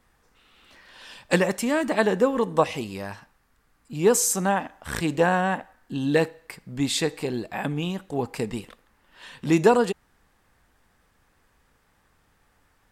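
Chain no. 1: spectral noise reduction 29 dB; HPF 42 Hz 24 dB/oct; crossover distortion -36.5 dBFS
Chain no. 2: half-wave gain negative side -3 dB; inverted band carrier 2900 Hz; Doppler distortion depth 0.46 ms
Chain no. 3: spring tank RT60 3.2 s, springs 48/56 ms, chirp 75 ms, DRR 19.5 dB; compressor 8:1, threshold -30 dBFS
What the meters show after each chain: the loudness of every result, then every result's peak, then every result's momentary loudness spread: -25.5, -23.0, -35.5 LUFS; -5.5, -5.5, -16.5 dBFS; 17, 13, 17 LU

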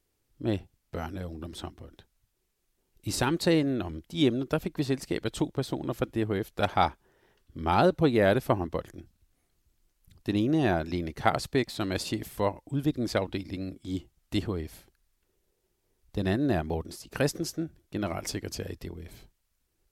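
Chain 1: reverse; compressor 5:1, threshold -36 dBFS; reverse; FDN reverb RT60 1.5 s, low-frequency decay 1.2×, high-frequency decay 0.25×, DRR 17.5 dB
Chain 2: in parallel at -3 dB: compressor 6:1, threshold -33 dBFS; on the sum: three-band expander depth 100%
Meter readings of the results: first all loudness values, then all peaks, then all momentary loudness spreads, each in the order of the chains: -40.5, -24.5 LUFS; -22.0, -1.5 dBFS; 9, 20 LU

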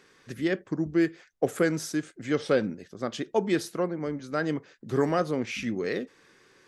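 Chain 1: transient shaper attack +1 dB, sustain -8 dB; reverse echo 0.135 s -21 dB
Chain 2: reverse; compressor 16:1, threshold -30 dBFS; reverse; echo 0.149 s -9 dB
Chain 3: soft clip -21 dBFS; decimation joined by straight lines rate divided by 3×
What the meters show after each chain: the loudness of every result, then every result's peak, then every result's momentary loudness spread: -29.0, -36.0, -32.0 LUFS; -11.0, -20.5, -21.0 dBFS; 10, 5, 7 LU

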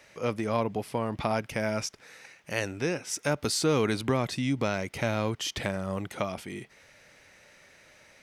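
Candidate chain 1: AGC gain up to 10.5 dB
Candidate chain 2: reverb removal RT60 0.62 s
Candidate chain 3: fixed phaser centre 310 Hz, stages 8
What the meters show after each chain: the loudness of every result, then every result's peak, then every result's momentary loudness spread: -21.0, -31.0, -33.5 LUFS; -3.0, -12.5, -16.5 dBFS; 12, 9, 9 LU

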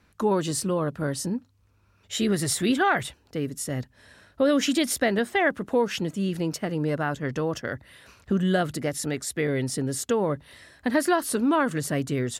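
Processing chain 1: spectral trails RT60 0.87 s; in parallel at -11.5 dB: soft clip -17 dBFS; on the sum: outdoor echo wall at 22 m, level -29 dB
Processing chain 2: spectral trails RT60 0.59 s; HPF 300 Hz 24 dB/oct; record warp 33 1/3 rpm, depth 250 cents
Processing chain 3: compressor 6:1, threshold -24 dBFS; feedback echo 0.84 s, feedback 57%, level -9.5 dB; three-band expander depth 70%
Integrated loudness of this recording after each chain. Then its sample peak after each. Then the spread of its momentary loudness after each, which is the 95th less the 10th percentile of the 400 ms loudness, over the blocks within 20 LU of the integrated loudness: -22.0, -25.5, -28.5 LUFS; -3.5, -6.5, -10.5 dBFS; 10, 12, 9 LU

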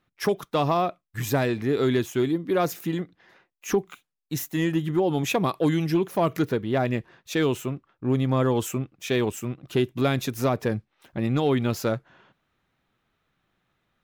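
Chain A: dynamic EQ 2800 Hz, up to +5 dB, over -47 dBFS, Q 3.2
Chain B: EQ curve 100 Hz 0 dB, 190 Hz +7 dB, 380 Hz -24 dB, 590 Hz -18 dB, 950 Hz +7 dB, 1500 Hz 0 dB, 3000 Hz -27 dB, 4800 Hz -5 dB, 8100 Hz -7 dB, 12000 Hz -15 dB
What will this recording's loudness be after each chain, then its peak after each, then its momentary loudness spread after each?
-25.5, -27.5 LUFS; -12.5, -11.0 dBFS; 9, 10 LU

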